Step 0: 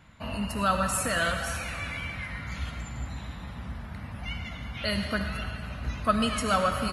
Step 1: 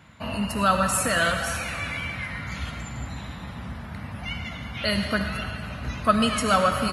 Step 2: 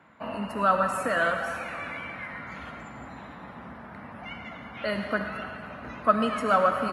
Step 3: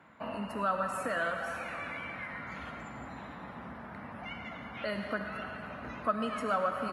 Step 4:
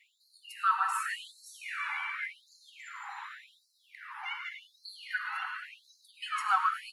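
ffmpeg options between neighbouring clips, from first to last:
ffmpeg -i in.wav -af "highpass=77,volume=4.5dB" out.wav
ffmpeg -i in.wav -filter_complex "[0:a]acrossover=split=220 2000:gain=0.126 1 0.141[link_01][link_02][link_03];[link_01][link_02][link_03]amix=inputs=3:normalize=0" out.wav
ffmpeg -i in.wav -af "acompressor=threshold=-38dB:ratio=1.5,volume=-1.5dB" out.wav
ffmpeg -i in.wav -af "afftfilt=real='re*gte(b*sr/1024,740*pow(4000/740,0.5+0.5*sin(2*PI*0.88*pts/sr)))':imag='im*gte(b*sr/1024,740*pow(4000/740,0.5+0.5*sin(2*PI*0.88*pts/sr)))':win_size=1024:overlap=0.75,volume=5.5dB" out.wav

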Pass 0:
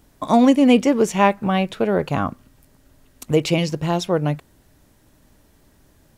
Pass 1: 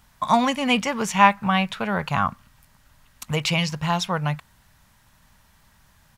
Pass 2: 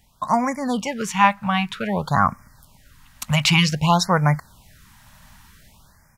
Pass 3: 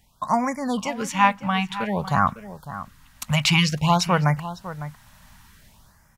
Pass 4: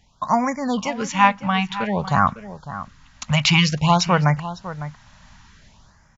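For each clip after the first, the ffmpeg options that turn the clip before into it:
ffmpeg -i in.wav -af "firequalizer=gain_entry='entry(200,0);entry(300,-15);entry(930,7);entry(8300,2)':delay=0.05:min_phase=1,volume=-2.5dB" out.wav
ffmpeg -i in.wav -af "dynaudnorm=framelen=260:gausssize=5:maxgain=10dB,afftfilt=real='re*(1-between(b*sr/1024,360*pow(3500/360,0.5+0.5*sin(2*PI*0.53*pts/sr))/1.41,360*pow(3500/360,0.5+0.5*sin(2*PI*0.53*pts/sr))*1.41))':imag='im*(1-between(b*sr/1024,360*pow(3500/360,0.5+0.5*sin(2*PI*0.53*pts/sr))/1.41,360*pow(3500/360,0.5+0.5*sin(2*PI*0.53*pts/sr))*1.41))':win_size=1024:overlap=0.75,volume=-1dB" out.wav
ffmpeg -i in.wav -filter_complex "[0:a]asplit=2[link_01][link_02];[link_02]adelay=553.9,volume=-13dB,highshelf=frequency=4000:gain=-12.5[link_03];[link_01][link_03]amix=inputs=2:normalize=0,volume=-2dB" out.wav
ffmpeg -i in.wav -af "aresample=16000,aresample=44100,volume=2.5dB" -ar 24000 -c:a mp2 -b:a 96k out.mp2

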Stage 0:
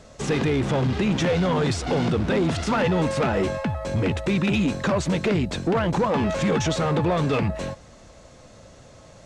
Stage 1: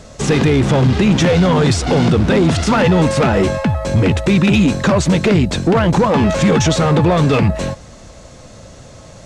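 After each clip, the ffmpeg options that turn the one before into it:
ffmpeg -i in.wav -af "bass=frequency=250:gain=3,treble=frequency=4000:gain=3,volume=8dB" out.wav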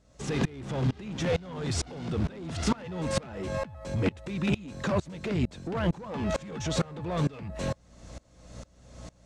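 ffmpeg -i in.wav -af "acompressor=threshold=-15dB:ratio=6,aeval=exprs='val(0)+0.0141*(sin(2*PI*60*n/s)+sin(2*PI*2*60*n/s)/2+sin(2*PI*3*60*n/s)/3+sin(2*PI*4*60*n/s)/4+sin(2*PI*5*60*n/s)/5)':channel_layout=same,aeval=exprs='val(0)*pow(10,-25*if(lt(mod(-2.2*n/s,1),2*abs(-2.2)/1000),1-mod(-2.2*n/s,1)/(2*abs(-2.2)/1000),(mod(-2.2*n/s,1)-2*abs(-2.2)/1000)/(1-2*abs(-2.2)/1000))/20)':channel_layout=same,volume=-5dB" out.wav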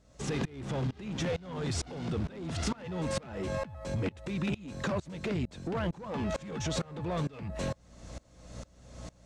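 ffmpeg -i in.wav -af "acompressor=threshold=-29dB:ratio=6" out.wav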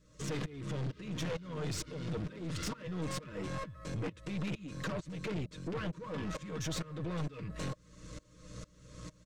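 ffmpeg -i in.wav -af "asuperstop=centerf=760:order=12:qfactor=2.2,aecho=1:1:6.4:0.62,aeval=exprs='(tanh(39.8*val(0)+0.4)-tanh(0.4))/39.8':channel_layout=same,volume=-1dB" out.wav

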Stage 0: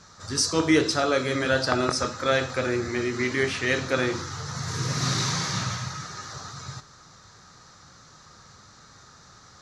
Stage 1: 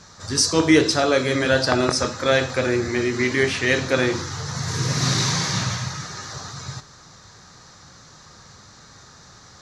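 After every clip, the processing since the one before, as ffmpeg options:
ffmpeg -i in.wav -af "equalizer=frequency=1300:width_type=o:width=0.25:gain=-5.5,volume=5dB" out.wav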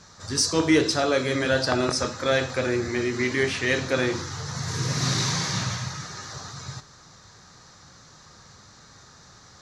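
ffmpeg -i in.wav -af "asoftclip=type=tanh:threshold=-3.5dB,volume=-3.5dB" out.wav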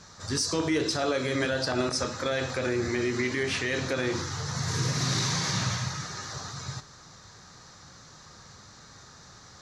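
ffmpeg -i in.wav -af "alimiter=limit=-18dB:level=0:latency=1:release=99" out.wav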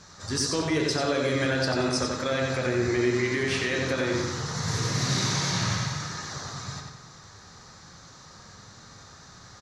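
ffmpeg -i in.wav -filter_complex "[0:a]asplit=2[link_01][link_02];[link_02]adelay=91,lowpass=frequency=4900:poles=1,volume=-3dB,asplit=2[link_03][link_04];[link_04]adelay=91,lowpass=frequency=4900:poles=1,volume=0.48,asplit=2[link_05][link_06];[link_06]adelay=91,lowpass=frequency=4900:poles=1,volume=0.48,asplit=2[link_07][link_08];[link_08]adelay=91,lowpass=frequency=4900:poles=1,volume=0.48,asplit=2[link_09][link_10];[link_10]adelay=91,lowpass=frequency=4900:poles=1,volume=0.48,asplit=2[link_11][link_12];[link_12]adelay=91,lowpass=frequency=4900:poles=1,volume=0.48[link_13];[link_01][link_03][link_05][link_07][link_09][link_11][link_13]amix=inputs=7:normalize=0" out.wav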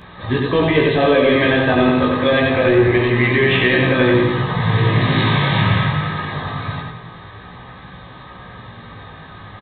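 ffmpeg -i in.wav -af "aresample=8000,aeval=exprs='0.251*sin(PI/2*1.58*val(0)/0.251)':channel_layout=same,aresample=44100,flanger=delay=16:depth=4.3:speed=0.25,asuperstop=centerf=1400:order=12:qfactor=7.7,volume=8.5dB" out.wav

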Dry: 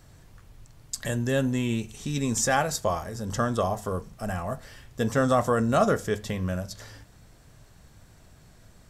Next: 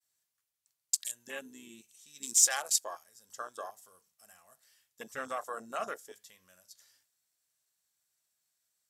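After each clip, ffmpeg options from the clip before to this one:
ffmpeg -i in.wav -af "aderivative,agate=range=-33dB:threshold=-60dB:ratio=3:detection=peak,afwtdn=0.00708,volume=5dB" out.wav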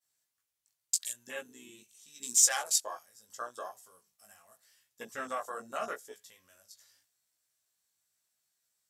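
ffmpeg -i in.wav -af "flanger=delay=16:depth=3.7:speed=0.82,volume=3.5dB" out.wav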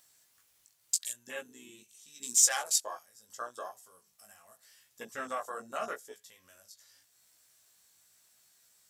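ffmpeg -i in.wav -af "acompressor=mode=upward:threshold=-52dB:ratio=2.5" out.wav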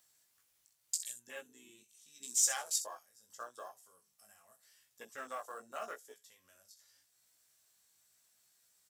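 ffmpeg -i in.wav -filter_complex "[0:a]acrossover=split=300|4300[link_01][link_02][link_03];[link_01]alimiter=level_in=31dB:limit=-24dB:level=0:latency=1:release=485,volume=-31dB[link_04];[link_02]acrusher=bits=6:mode=log:mix=0:aa=0.000001[link_05];[link_03]aecho=1:1:31|63:0.266|0.335[link_06];[link_04][link_05][link_06]amix=inputs=3:normalize=0,volume=-6.5dB" out.wav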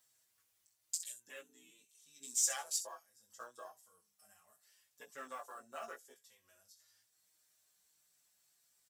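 ffmpeg -i in.wav -filter_complex "[0:a]asplit=2[link_01][link_02];[link_02]adelay=5.7,afreqshift=-0.31[link_03];[link_01][link_03]amix=inputs=2:normalize=1" out.wav

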